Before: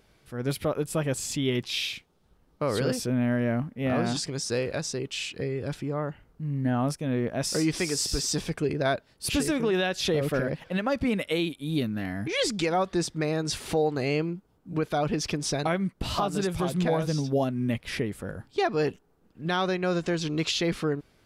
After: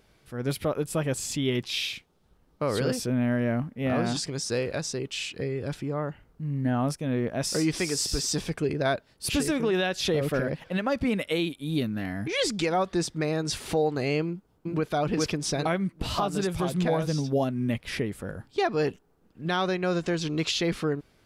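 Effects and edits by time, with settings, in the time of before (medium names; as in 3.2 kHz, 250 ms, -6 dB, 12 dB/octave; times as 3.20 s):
14.24–14.89 s: echo throw 410 ms, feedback 30%, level -0.5 dB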